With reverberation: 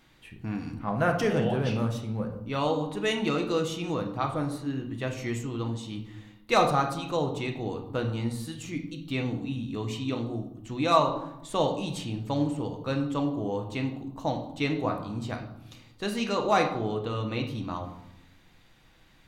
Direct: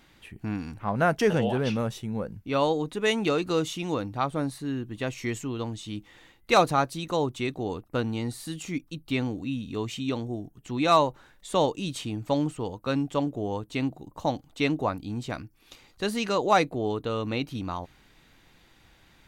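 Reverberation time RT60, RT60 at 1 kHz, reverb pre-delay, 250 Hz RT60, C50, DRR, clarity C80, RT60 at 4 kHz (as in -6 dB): 0.85 s, 0.85 s, 6 ms, 1.3 s, 8.5 dB, 3.0 dB, 11.5 dB, 0.60 s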